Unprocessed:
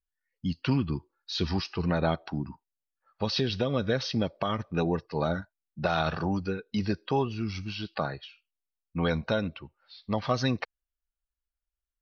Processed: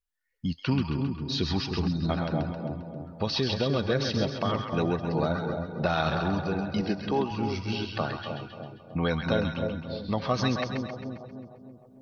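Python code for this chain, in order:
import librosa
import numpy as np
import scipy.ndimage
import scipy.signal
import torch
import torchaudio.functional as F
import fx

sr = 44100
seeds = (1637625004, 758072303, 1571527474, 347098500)

y = fx.recorder_agc(x, sr, target_db=-22.5, rise_db_per_s=6.6, max_gain_db=30)
y = fx.cheby1_highpass(y, sr, hz=210.0, order=2, at=(6.81, 7.31))
y = fx.echo_split(y, sr, split_hz=790.0, low_ms=305, high_ms=133, feedback_pct=52, wet_db=-5.5)
y = fx.spec_box(y, sr, start_s=1.87, length_s=0.22, low_hz=330.0, high_hz=3600.0, gain_db=-24)
y = fx.echo_filtered(y, sr, ms=270, feedback_pct=45, hz=1300.0, wet_db=-10.5)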